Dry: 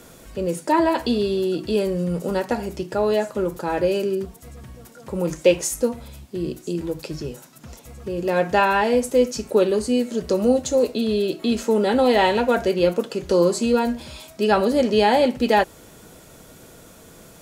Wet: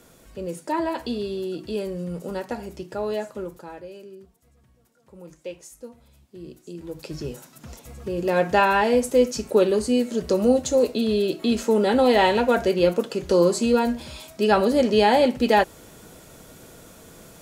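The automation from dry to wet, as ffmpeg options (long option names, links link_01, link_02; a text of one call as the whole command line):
ffmpeg -i in.wav -af "volume=12dB,afade=type=out:start_time=3.27:duration=0.56:silence=0.237137,afade=type=in:start_time=5.8:duration=1.01:silence=0.375837,afade=type=in:start_time=6.81:duration=0.5:silence=0.298538" out.wav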